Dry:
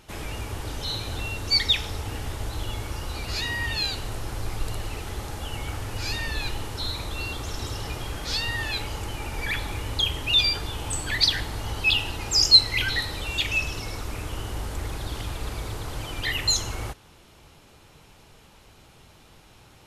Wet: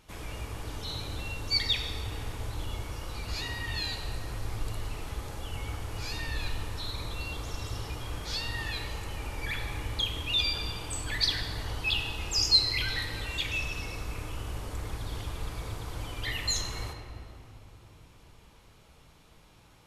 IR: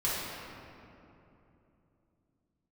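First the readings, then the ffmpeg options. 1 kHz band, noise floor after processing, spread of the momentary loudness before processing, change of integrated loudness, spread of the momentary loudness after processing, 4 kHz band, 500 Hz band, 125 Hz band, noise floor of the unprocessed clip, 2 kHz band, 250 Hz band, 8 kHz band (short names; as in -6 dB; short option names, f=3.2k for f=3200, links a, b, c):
-5.5 dB, -57 dBFS, 14 LU, -6.5 dB, 12 LU, -7.0 dB, -5.5 dB, -4.0 dB, -53 dBFS, -6.5 dB, -5.5 dB, -6.5 dB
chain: -filter_complex "[0:a]asplit=2[a][b];[1:a]atrim=start_sample=2205[c];[b][c]afir=irnorm=-1:irlink=0,volume=-10.5dB[d];[a][d]amix=inputs=2:normalize=0,volume=-9dB"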